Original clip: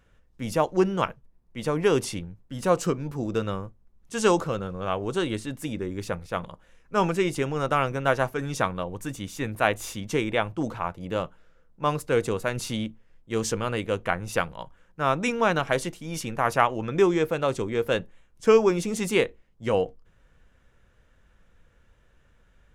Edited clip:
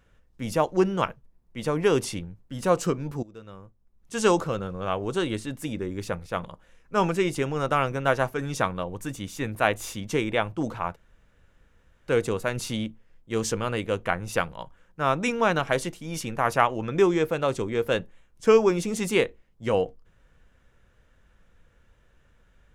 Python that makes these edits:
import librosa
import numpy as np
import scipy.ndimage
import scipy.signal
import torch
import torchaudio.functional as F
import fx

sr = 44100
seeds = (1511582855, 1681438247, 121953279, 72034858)

y = fx.edit(x, sr, fx.fade_in_from(start_s=3.23, length_s=0.92, curve='qua', floor_db=-19.5),
    fx.room_tone_fill(start_s=10.96, length_s=1.12), tone=tone)